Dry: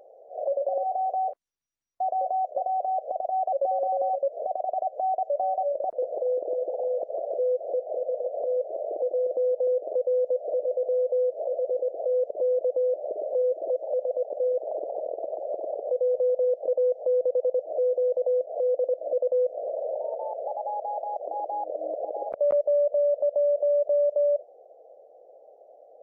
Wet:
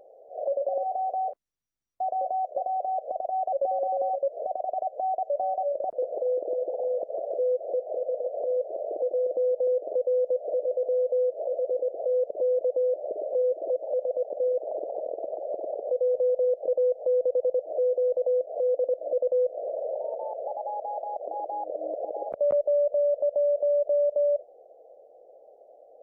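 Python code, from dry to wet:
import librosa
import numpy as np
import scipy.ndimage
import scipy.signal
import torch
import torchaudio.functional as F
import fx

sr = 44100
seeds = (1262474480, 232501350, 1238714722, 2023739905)

y = fx.low_shelf(x, sr, hz=370.0, db=9.0)
y = y * 10.0 ** (-3.5 / 20.0)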